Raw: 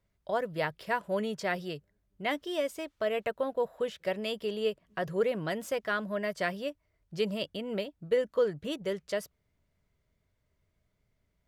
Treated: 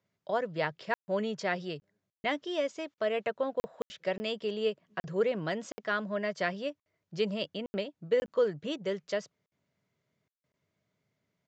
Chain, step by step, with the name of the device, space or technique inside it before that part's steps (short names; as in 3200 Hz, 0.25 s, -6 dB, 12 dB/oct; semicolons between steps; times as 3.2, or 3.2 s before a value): call with lost packets (HPF 120 Hz 24 dB/oct; downsampling 16000 Hz; packet loss bursts)